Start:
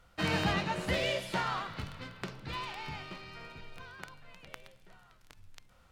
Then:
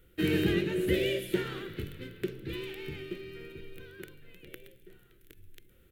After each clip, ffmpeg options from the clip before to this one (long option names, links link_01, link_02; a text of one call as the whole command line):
ffmpeg -i in.wav -af "firequalizer=gain_entry='entry(250,0);entry(360,14);entry(660,-16);entry(1000,-21);entry(1600,-4);entry(3400,-2);entry(4800,-13);entry(13000,11)':delay=0.05:min_phase=1,volume=2dB" out.wav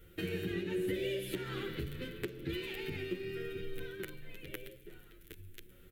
ffmpeg -i in.wav -filter_complex "[0:a]acompressor=threshold=-38dB:ratio=8,asplit=2[link_01][link_02];[link_02]adelay=8.9,afreqshift=0.37[link_03];[link_01][link_03]amix=inputs=2:normalize=1,volume=7dB" out.wav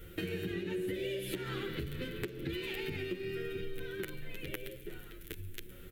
ffmpeg -i in.wav -af "acompressor=threshold=-45dB:ratio=3,volume=8dB" out.wav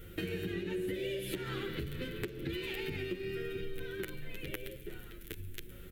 ffmpeg -i in.wav -af "aeval=exprs='val(0)+0.00178*(sin(2*PI*50*n/s)+sin(2*PI*2*50*n/s)/2+sin(2*PI*3*50*n/s)/3+sin(2*PI*4*50*n/s)/4+sin(2*PI*5*50*n/s)/5)':channel_layout=same" out.wav